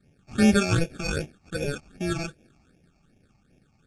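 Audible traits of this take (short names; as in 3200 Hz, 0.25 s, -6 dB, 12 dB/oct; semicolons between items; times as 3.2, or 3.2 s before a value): aliases and images of a low sample rate 1000 Hz, jitter 0%; phasing stages 8, 2.6 Hz, lowest notch 450–1300 Hz; AAC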